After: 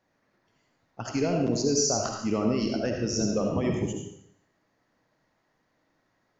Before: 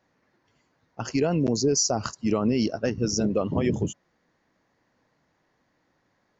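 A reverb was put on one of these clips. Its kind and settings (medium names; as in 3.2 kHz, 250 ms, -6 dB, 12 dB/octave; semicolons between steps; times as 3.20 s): algorithmic reverb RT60 0.69 s, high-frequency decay 1×, pre-delay 30 ms, DRR 1 dB; trim -4 dB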